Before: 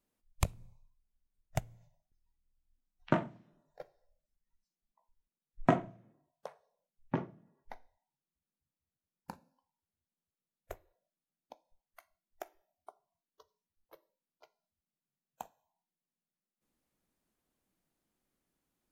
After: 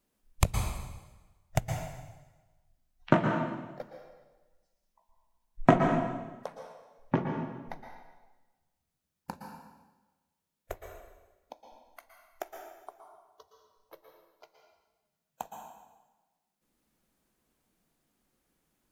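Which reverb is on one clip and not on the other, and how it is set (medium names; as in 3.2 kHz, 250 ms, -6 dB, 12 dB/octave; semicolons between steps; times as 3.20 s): plate-style reverb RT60 1.2 s, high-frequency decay 0.9×, pre-delay 105 ms, DRR 2.5 dB; trim +6 dB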